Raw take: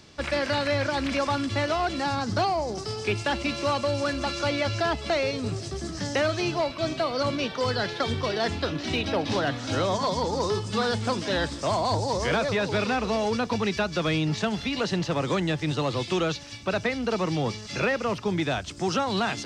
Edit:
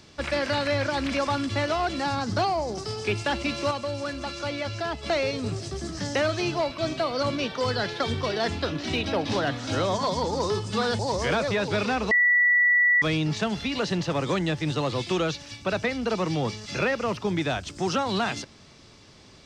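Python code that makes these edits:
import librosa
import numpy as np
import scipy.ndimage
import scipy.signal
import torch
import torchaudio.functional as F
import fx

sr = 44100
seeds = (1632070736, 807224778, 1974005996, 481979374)

y = fx.edit(x, sr, fx.clip_gain(start_s=3.71, length_s=1.32, db=-4.5),
    fx.cut(start_s=10.99, length_s=1.01),
    fx.bleep(start_s=13.12, length_s=0.91, hz=1950.0, db=-16.5), tone=tone)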